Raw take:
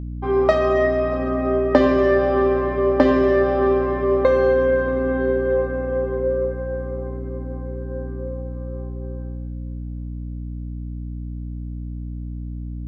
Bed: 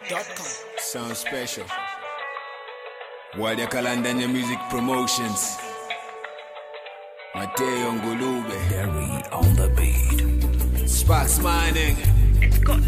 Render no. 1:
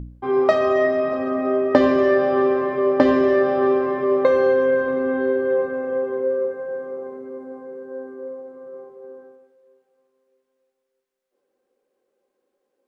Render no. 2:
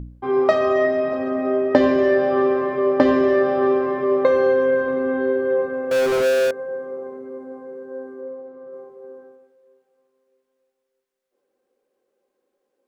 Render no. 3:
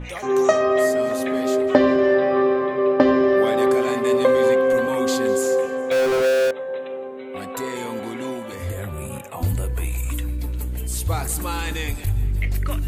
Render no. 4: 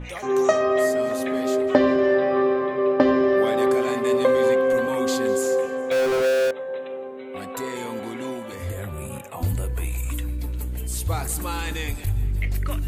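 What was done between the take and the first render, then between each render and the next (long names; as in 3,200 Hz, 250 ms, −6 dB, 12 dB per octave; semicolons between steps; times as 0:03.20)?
hum removal 60 Hz, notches 5
0:00.85–0:02.31: notch filter 1,200 Hz; 0:05.91–0:06.51: power curve on the samples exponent 0.35; 0:08.21–0:08.73: high-frequency loss of the air 96 metres
mix in bed −5.5 dB
level −2 dB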